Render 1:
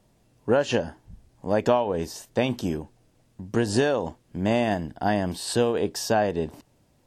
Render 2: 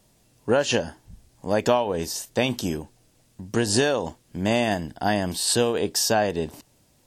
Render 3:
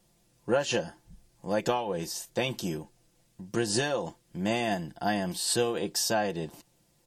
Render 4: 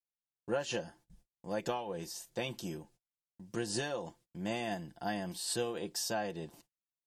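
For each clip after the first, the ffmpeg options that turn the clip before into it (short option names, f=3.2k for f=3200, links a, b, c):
-af "highshelf=f=2.9k:g=10.5"
-af "aecho=1:1:5.8:0.62,volume=-7dB"
-af "agate=range=-37dB:threshold=-53dB:ratio=16:detection=peak,volume=-8dB"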